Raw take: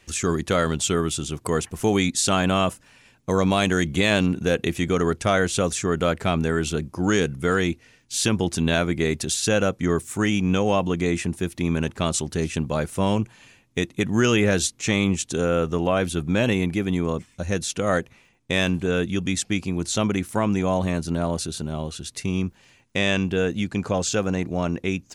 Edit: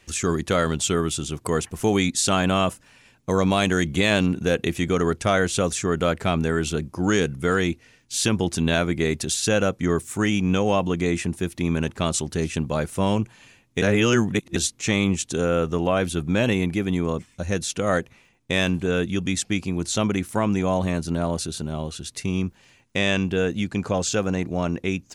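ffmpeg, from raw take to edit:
ffmpeg -i in.wav -filter_complex "[0:a]asplit=3[link_01][link_02][link_03];[link_01]atrim=end=13.822[link_04];[link_02]atrim=start=13.818:end=14.562,asetpts=PTS-STARTPTS,areverse[link_05];[link_03]atrim=start=14.558[link_06];[link_04][link_05]acrossfade=duration=0.004:curve1=hsin:curve2=hsin[link_07];[link_07][link_06]acrossfade=duration=0.004:curve1=hsin:curve2=hsin" out.wav

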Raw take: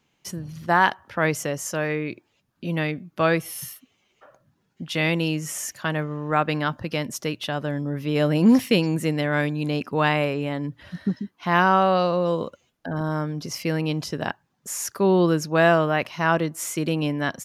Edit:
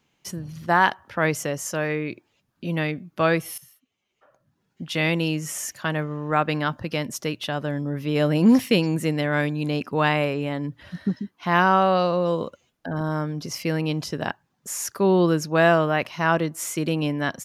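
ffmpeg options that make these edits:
ffmpeg -i in.wav -filter_complex "[0:a]asplit=2[link_01][link_02];[link_01]atrim=end=3.58,asetpts=PTS-STARTPTS,afade=type=out:start_time=3.576:duration=0.004:curve=hsin:silence=0.158489[link_03];[link_02]atrim=start=3.58,asetpts=PTS-STARTPTS,afade=type=in:duration=1.24:curve=qua:silence=0.158489[link_04];[link_03][link_04]concat=n=2:v=0:a=1" out.wav

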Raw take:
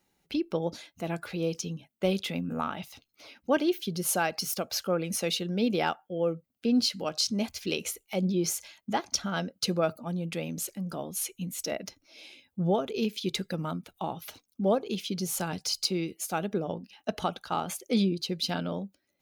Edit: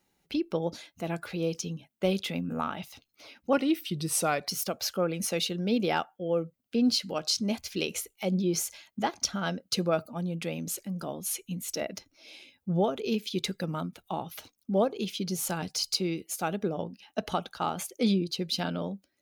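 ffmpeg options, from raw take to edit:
ffmpeg -i in.wav -filter_complex "[0:a]asplit=3[link_01][link_02][link_03];[link_01]atrim=end=3.534[link_04];[link_02]atrim=start=3.53:end=4.39,asetpts=PTS-STARTPTS,asetrate=39690,aresample=44100[link_05];[link_03]atrim=start=4.386[link_06];[link_04][link_05]acrossfade=duration=0.004:curve1=hsin:curve2=hsin[link_07];[link_07][link_06]acrossfade=duration=0.004:curve1=hsin:curve2=hsin" out.wav

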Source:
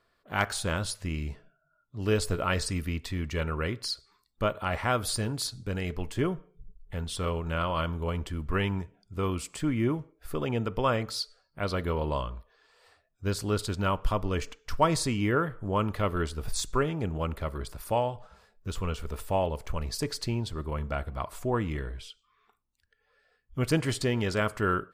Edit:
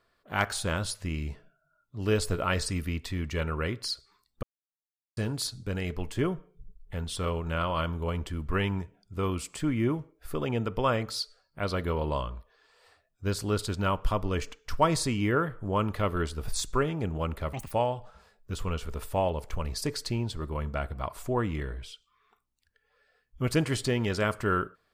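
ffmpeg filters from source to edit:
ffmpeg -i in.wav -filter_complex "[0:a]asplit=5[link_01][link_02][link_03][link_04][link_05];[link_01]atrim=end=4.43,asetpts=PTS-STARTPTS,afade=type=out:start_time=4.426:duration=0.004:curve=hsin[link_06];[link_02]atrim=start=4.43:end=5.17,asetpts=PTS-STARTPTS,volume=0[link_07];[link_03]atrim=start=5.17:end=17.534,asetpts=PTS-STARTPTS,afade=type=in:duration=0.004:curve=hsin[link_08];[link_04]atrim=start=17.53:end=17.88,asetpts=PTS-STARTPTS,asetrate=83790,aresample=44100[link_09];[link_05]atrim=start=17.876[link_10];[link_06][link_07][link_08]concat=n=3:v=0:a=1[link_11];[link_11][link_09]acrossfade=duration=0.004:curve1=hsin:curve2=hsin[link_12];[link_12][link_10]acrossfade=duration=0.004:curve1=hsin:curve2=hsin" out.wav

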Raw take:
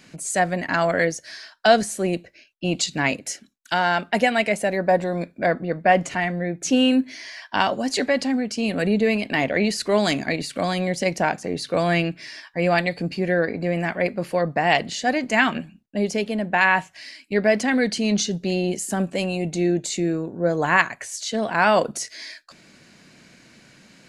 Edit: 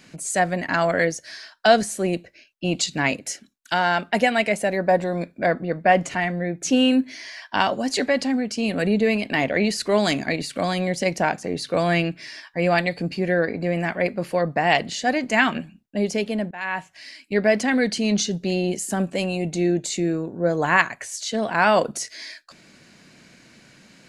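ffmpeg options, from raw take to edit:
ffmpeg -i in.wav -filter_complex "[0:a]asplit=2[link_01][link_02];[link_01]atrim=end=16.51,asetpts=PTS-STARTPTS,afade=type=out:start_time=16.506:duration=0.004:curve=hsin:silence=0.0841395[link_03];[link_02]atrim=start=16.51,asetpts=PTS-STARTPTS,afade=type=in:duration=0.67:silence=0.0841395[link_04];[link_03][link_04]concat=n=2:v=0:a=1" out.wav

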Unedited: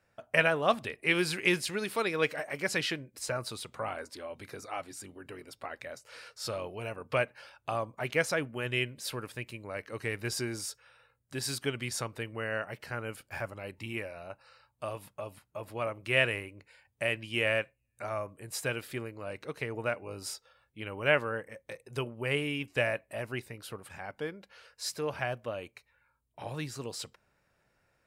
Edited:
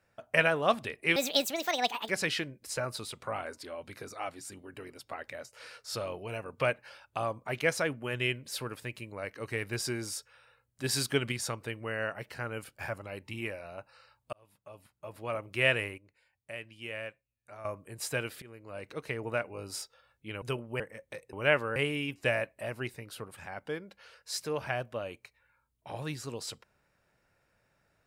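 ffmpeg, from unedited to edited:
ffmpeg -i in.wav -filter_complex "[0:a]asplit=13[link_01][link_02][link_03][link_04][link_05][link_06][link_07][link_08][link_09][link_10][link_11][link_12][link_13];[link_01]atrim=end=1.164[link_14];[link_02]atrim=start=1.16:end=2.61,asetpts=PTS-STARTPTS,asetrate=68796,aresample=44100,atrim=end_sample=40990,asetpts=PTS-STARTPTS[link_15];[link_03]atrim=start=2.606:end=11.362[link_16];[link_04]atrim=start=11.358:end=11.842,asetpts=PTS-STARTPTS,volume=4dB[link_17];[link_05]atrim=start=11.838:end=14.85,asetpts=PTS-STARTPTS,afade=type=out:start_time=3.008:duration=0.004:curve=hsin[link_18];[link_06]atrim=start=14.85:end=16.502,asetpts=PTS-STARTPTS,afade=type=in:duration=1.14[link_19];[link_07]atrim=start=16.498:end=18.172,asetpts=PTS-STARTPTS,volume=-11dB[link_20];[link_08]atrim=start=18.168:end=18.94,asetpts=PTS-STARTPTS,afade=type=out:start_time=0.768:duration=0.004:curve=hsin:silence=0.1[link_21];[link_09]atrim=start=18.94:end=20.942,asetpts=PTS-STARTPTS,afade=type=in:duration=0.68:curve=qsin:silence=0.1[link_22];[link_10]atrim=start=21.898:end=22.282[link_23];[link_11]atrim=start=21.368:end=21.902[link_24];[link_12]atrim=start=20.938:end=21.372[link_25];[link_13]atrim=start=22.278[link_26];[link_14][link_15]acrossfade=duration=0.004:curve1=hsin:curve2=hsin[link_27];[link_27][link_16]acrossfade=duration=0.004:curve1=hsin:curve2=hsin[link_28];[link_28][link_17]acrossfade=duration=0.004:curve1=hsin:curve2=hsin[link_29];[link_18][link_19]concat=n=2:v=0:a=1[link_30];[link_29][link_30]acrossfade=duration=0.004:curve1=hsin:curve2=hsin[link_31];[link_31][link_20]acrossfade=duration=0.004:curve1=hsin:curve2=hsin[link_32];[link_21][link_22]concat=n=2:v=0:a=1[link_33];[link_32][link_33]acrossfade=duration=0.004:curve1=hsin:curve2=hsin[link_34];[link_34][link_23]acrossfade=duration=0.004:curve1=hsin:curve2=hsin[link_35];[link_35][link_24]acrossfade=duration=0.004:curve1=hsin:curve2=hsin[link_36];[link_36][link_25]acrossfade=duration=0.004:curve1=hsin:curve2=hsin[link_37];[link_37][link_26]acrossfade=duration=0.004:curve1=hsin:curve2=hsin" out.wav

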